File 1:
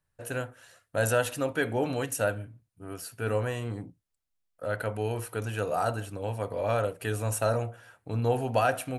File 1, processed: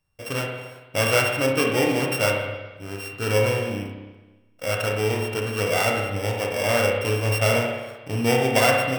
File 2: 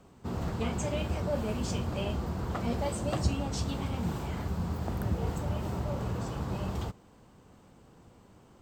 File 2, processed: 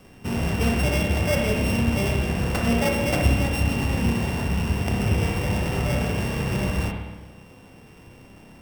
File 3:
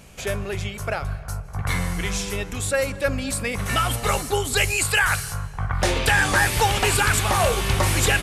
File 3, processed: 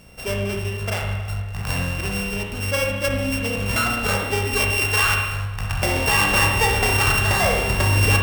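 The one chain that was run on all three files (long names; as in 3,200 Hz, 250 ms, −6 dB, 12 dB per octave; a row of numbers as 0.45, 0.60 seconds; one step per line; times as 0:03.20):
samples sorted by size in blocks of 16 samples
spring reverb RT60 1.2 s, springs 30/56 ms, chirp 50 ms, DRR 0.5 dB
normalise the peak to −6 dBFS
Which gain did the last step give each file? +4.5, +6.5, −1.5 decibels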